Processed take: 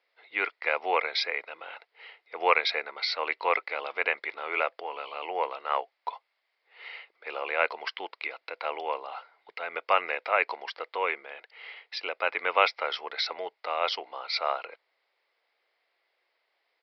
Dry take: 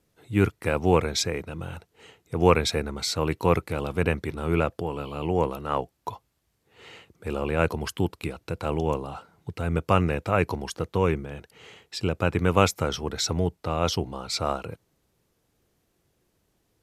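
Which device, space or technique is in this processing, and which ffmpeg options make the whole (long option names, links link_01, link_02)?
musical greeting card: -af "aresample=11025,aresample=44100,highpass=frequency=580:width=0.5412,highpass=frequency=580:width=1.3066,equalizer=frequency=2100:width_type=o:width=0.3:gain=11.5"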